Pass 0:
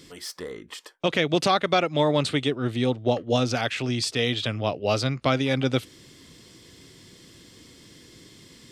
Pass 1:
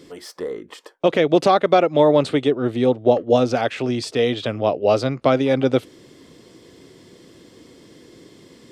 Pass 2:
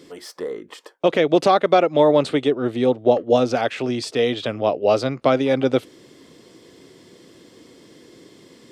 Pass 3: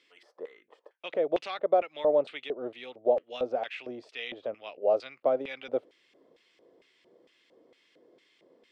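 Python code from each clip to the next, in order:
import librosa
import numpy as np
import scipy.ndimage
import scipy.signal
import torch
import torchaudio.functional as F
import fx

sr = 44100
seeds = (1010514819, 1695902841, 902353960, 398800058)

y1 = fx.peak_eq(x, sr, hz=490.0, db=13.0, octaves=2.8)
y1 = F.gain(torch.from_numpy(y1), -4.0).numpy()
y2 = fx.low_shelf(y1, sr, hz=97.0, db=-9.5)
y3 = fx.filter_lfo_bandpass(y2, sr, shape='square', hz=2.2, low_hz=590.0, high_hz=2500.0, q=2.3)
y3 = F.gain(torch.from_numpy(y3), -6.0).numpy()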